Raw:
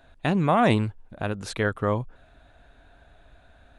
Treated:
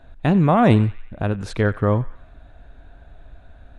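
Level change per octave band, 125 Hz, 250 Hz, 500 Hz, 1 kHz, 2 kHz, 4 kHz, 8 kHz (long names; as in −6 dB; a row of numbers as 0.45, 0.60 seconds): +8.5 dB, +7.0 dB, +4.5 dB, +3.0 dB, +1.0 dB, −1.0 dB, can't be measured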